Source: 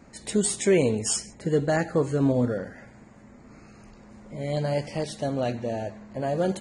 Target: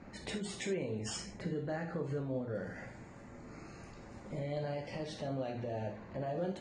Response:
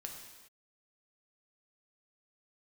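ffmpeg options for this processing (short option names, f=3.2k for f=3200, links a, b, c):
-filter_complex "[0:a]asetnsamples=n=441:p=0,asendcmd='2.55 lowpass f 8300;4.39 lowpass f 4100',lowpass=3.8k,acompressor=threshold=-35dB:ratio=2,alimiter=level_in=5.5dB:limit=-24dB:level=0:latency=1:release=110,volume=-5.5dB[a];[1:a]atrim=start_sample=2205,atrim=end_sample=3528[b];[a][b]afir=irnorm=-1:irlink=0,volume=4dB"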